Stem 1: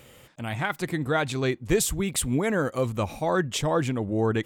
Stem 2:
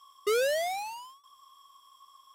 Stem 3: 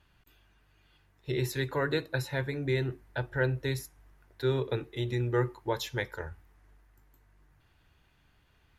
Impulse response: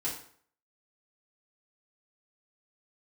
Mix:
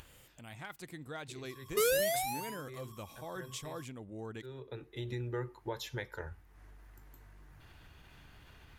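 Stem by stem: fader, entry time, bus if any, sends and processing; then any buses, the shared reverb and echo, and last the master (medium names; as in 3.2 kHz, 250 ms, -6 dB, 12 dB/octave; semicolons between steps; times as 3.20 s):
-19.0 dB, 0.00 s, bus A, no send, treble shelf 3.3 kHz +9 dB; one-sided clip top -13.5 dBFS
-3.0 dB, 1.50 s, no bus, no send, peaking EQ 12 kHz +14 dB 0.57 oct
-1.5 dB, 0.00 s, bus A, no send, upward compressor, threshold -49 dBFS; auto duck -19 dB, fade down 0.30 s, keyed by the first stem
bus A: 0.0 dB, compression 2.5:1, threshold -38 dBFS, peak gain reduction 9.5 dB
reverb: none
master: upward compressor, threshold -50 dBFS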